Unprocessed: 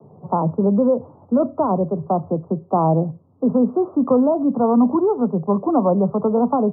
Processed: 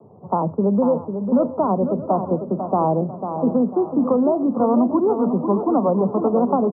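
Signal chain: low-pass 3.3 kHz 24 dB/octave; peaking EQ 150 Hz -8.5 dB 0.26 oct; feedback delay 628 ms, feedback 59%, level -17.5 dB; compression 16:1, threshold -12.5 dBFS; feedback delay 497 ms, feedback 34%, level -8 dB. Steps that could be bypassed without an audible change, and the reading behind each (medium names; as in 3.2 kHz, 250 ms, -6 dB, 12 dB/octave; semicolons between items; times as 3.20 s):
low-pass 3.3 kHz: input has nothing above 1.2 kHz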